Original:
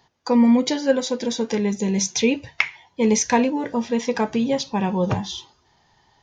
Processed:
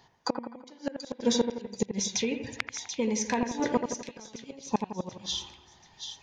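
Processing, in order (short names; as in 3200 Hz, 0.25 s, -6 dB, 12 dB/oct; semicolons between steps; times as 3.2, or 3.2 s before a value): 1.84–3.43 compressor 6:1, threshold -27 dBFS, peak gain reduction 13 dB; flipped gate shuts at -14 dBFS, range -31 dB; split-band echo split 2600 Hz, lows 84 ms, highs 0.734 s, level -7 dB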